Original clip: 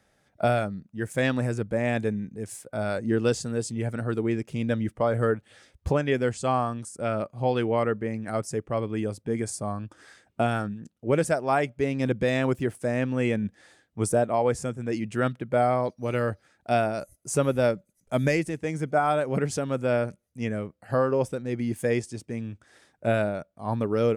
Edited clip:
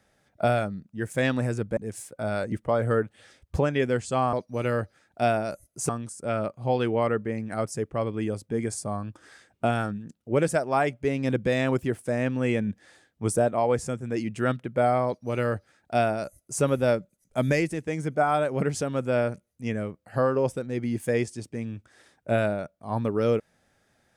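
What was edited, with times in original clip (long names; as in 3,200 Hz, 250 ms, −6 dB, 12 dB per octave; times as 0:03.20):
0:01.77–0:02.31: remove
0:03.06–0:04.84: remove
0:15.82–0:17.38: duplicate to 0:06.65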